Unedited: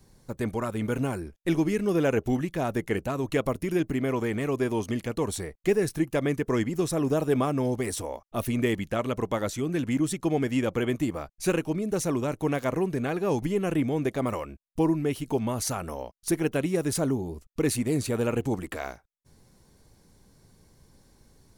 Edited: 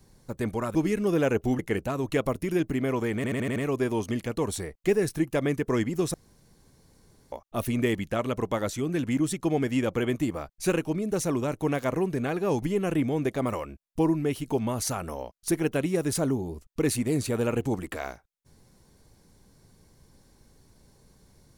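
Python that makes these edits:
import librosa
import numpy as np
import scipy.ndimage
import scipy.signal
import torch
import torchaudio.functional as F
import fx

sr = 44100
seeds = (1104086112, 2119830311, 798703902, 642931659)

y = fx.edit(x, sr, fx.cut(start_s=0.75, length_s=0.82),
    fx.cut(start_s=2.41, length_s=0.38),
    fx.stutter(start_s=4.36, slice_s=0.08, count=6),
    fx.room_tone_fill(start_s=6.94, length_s=1.18), tone=tone)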